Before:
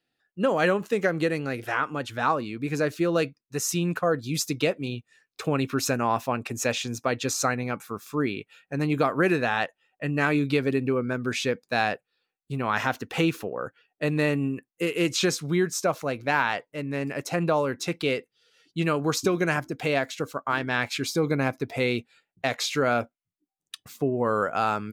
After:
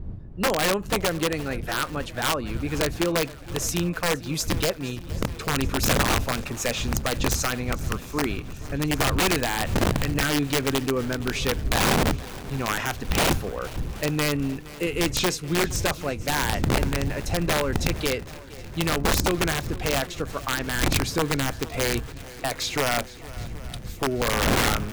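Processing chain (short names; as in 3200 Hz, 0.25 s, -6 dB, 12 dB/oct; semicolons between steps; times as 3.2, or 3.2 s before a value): wind noise 99 Hz -28 dBFS; wrapped overs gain 15.5 dB; swung echo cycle 0.778 s, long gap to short 1.5:1, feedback 59%, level -19 dB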